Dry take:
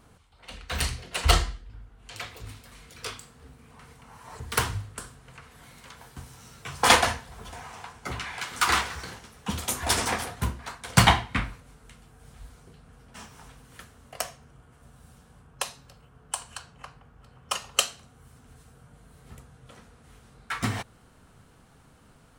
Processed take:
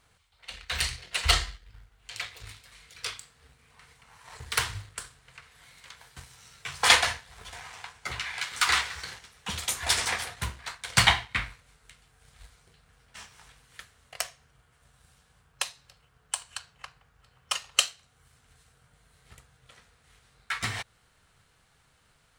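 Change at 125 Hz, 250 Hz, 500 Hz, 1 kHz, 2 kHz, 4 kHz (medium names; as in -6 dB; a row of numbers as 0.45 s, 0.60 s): -7.5 dB, -12.0 dB, -7.5 dB, -5.0 dB, +1.0 dB, +2.0 dB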